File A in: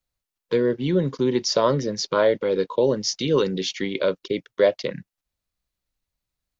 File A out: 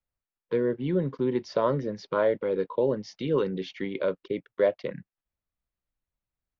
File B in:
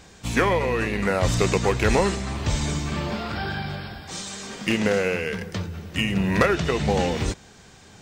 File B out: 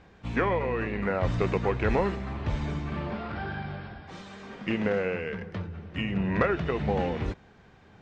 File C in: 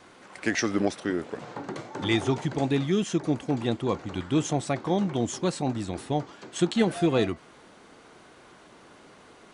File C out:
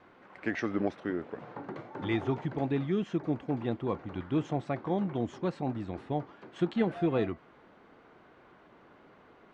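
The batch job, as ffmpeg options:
-af "lowpass=2.2k,volume=-5dB"

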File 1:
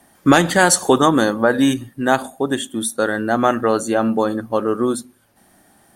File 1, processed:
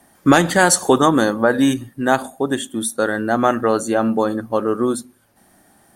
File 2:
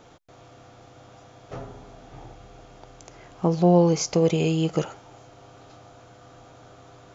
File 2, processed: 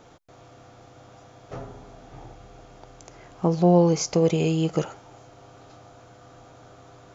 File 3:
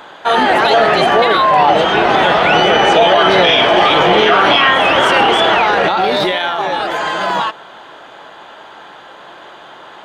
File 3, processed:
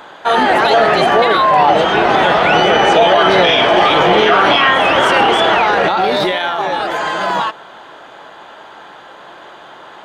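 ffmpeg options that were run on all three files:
-af "equalizer=f=3.1k:w=1.5:g=-2"

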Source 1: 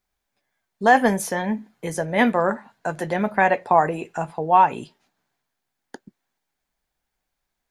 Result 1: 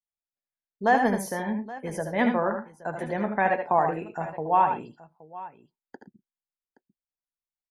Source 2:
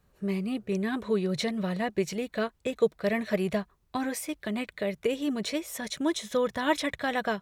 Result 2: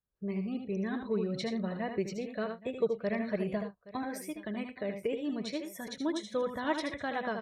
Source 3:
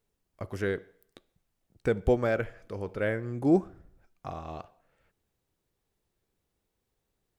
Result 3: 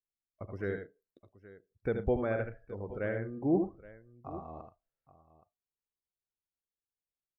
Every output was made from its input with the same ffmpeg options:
-filter_complex "[0:a]afftdn=nr=22:nf=-44,highshelf=f=4.2k:g=-11,aexciter=amount=2.1:drive=3.4:freq=4.2k,asplit=2[a][b];[b]aecho=0:1:70|79|114|822:0.2|0.447|0.106|0.126[c];[a][c]amix=inputs=2:normalize=0,volume=-5.5dB"

